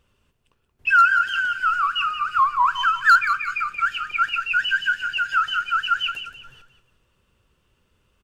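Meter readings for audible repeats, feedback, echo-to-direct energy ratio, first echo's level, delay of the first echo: 3, 36%, −10.5 dB, −11.0 dB, 178 ms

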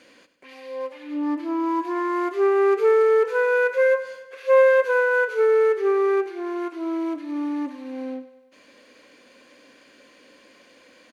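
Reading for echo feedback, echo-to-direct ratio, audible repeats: 58%, −12.0 dB, 5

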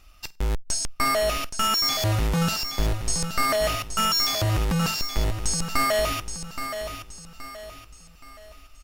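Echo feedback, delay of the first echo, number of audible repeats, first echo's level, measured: 39%, 823 ms, 4, −9.0 dB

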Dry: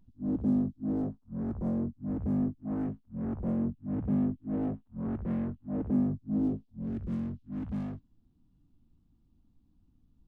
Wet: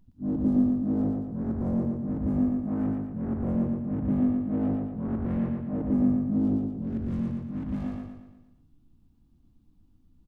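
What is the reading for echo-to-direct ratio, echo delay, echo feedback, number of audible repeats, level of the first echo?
−2.0 dB, 116 ms, 49%, 6, −3.0 dB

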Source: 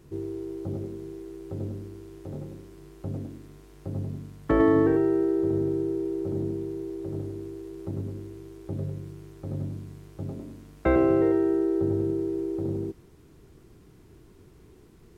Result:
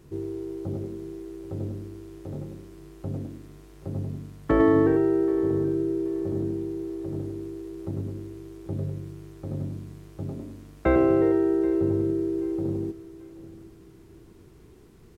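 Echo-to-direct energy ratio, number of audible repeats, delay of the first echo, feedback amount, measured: −18.0 dB, 2, 781 ms, 30%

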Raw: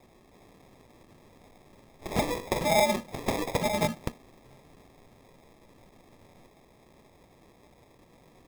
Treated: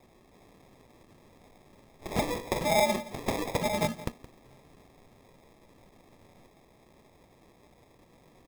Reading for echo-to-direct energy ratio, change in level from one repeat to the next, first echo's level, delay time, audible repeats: −17.0 dB, repeats not evenly spaced, −17.0 dB, 170 ms, 1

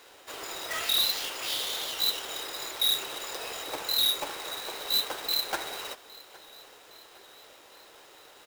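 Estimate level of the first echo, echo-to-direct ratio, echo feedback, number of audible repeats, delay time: −22.0 dB, −20.5 dB, 57%, 3, 812 ms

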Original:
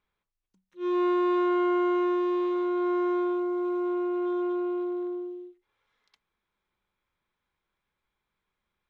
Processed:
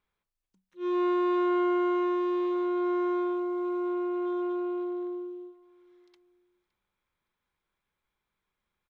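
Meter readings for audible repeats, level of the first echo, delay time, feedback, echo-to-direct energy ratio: 2, −23.0 dB, 565 ms, 37%, −22.5 dB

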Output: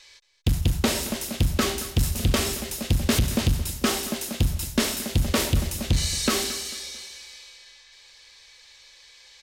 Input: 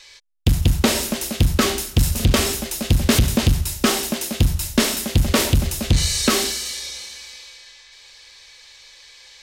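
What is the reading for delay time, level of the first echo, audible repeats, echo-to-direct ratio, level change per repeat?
222 ms, −15.0 dB, 3, −14.5 dB, −8.5 dB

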